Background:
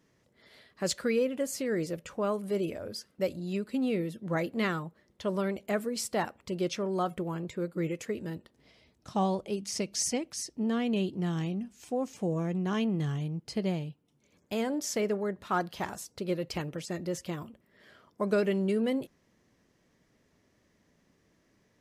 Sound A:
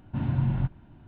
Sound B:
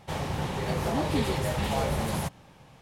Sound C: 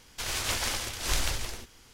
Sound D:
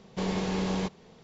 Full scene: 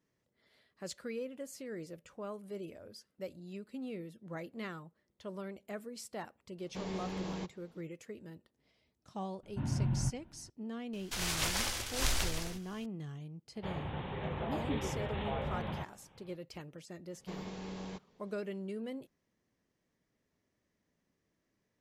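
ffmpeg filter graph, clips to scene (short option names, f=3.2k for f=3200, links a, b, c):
-filter_complex "[4:a]asplit=2[a][b];[0:a]volume=-12.5dB[c];[2:a]aresample=8000,aresample=44100[d];[a]atrim=end=1.23,asetpts=PTS-STARTPTS,volume=-10.5dB,afade=t=in:d=0.004:c=hsin,afade=t=out:st=1.226:d=0.004:c=hsin,adelay=290178S[e];[1:a]atrim=end=1.07,asetpts=PTS-STARTPTS,volume=-7dB,afade=t=in:d=0.004:c=hsin,afade=t=out:st=1.066:d=0.004:c=hsin,adelay=9430[f];[3:a]atrim=end=1.93,asetpts=PTS-STARTPTS,volume=-3.5dB,afade=t=in:d=0.004:c=hsin,afade=t=out:st=1.926:d=0.004:c=hsin,adelay=10930[g];[d]atrim=end=2.81,asetpts=PTS-STARTPTS,volume=-9dB,afade=t=in:d=0.004:c=hsin,afade=t=out:st=2.806:d=0.004:c=hsin,adelay=13550[h];[b]atrim=end=1.23,asetpts=PTS-STARTPTS,volume=-14dB,afade=t=in:d=0.004:c=hsin,afade=t=out:st=1.226:d=0.004:c=hsin,adelay=17100[i];[c][e][f][g][h][i]amix=inputs=6:normalize=0"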